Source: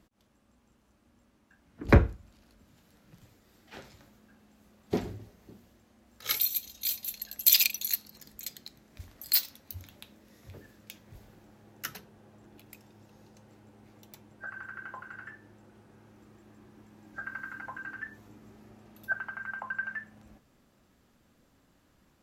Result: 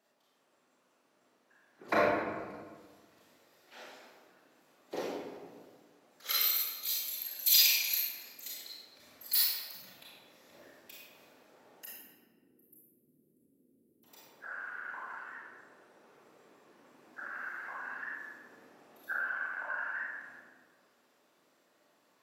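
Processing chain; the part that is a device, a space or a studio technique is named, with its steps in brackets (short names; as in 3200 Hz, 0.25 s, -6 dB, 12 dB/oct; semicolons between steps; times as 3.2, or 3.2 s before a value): 11.84–14.04 inverse Chebyshev band-stop 560–6300 Hz, stop band 40 dB; whispering ghost (whisperiser; HPF 470 Hz 12 dB/oct; reverb RT60 1.6 s, pre-delay 26 ms, DRR -7.5 dB); gain -7 dB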